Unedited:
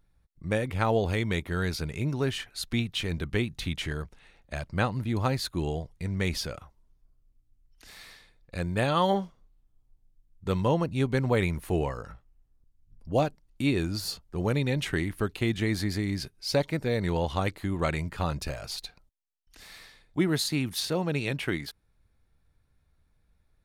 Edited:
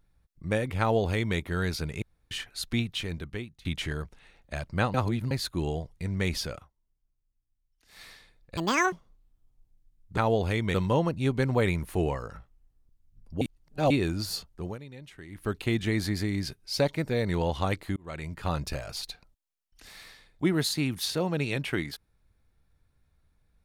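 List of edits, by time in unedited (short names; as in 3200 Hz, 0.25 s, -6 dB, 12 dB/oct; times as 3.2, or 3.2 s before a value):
0.8–1.37 copy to 10.49
2.02–2.31 room tone
2.81–3.65 fade out, to -23 dB
4.94–5.31 reverse
6.55–8.02 dip -14 dB, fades 0.14 s
8.57–9.24 speed 190%
13.16–13.65 reverse
14.27–15.29 dip -18 dB, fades 0.26 s
17.71–18.27 fade in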